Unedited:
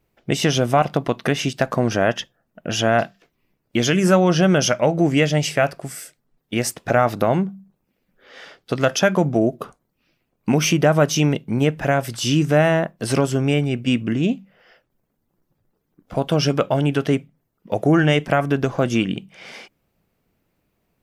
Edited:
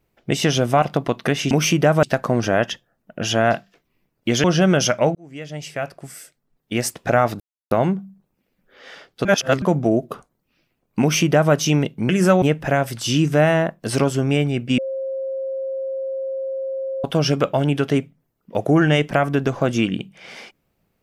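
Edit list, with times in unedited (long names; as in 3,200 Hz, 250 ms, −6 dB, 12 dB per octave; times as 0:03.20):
0:03.92–0:04.25: move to 0:11.59
0:04.96–0:06.67: fade in
0:07.21: splice in silence 0.31 s
0:08.75–0:09.12: reverse
0:10.51–0:11.03: duplicate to 0:01.51
0:13.95–0:16.21: beep over 534 Hz −23 dBFS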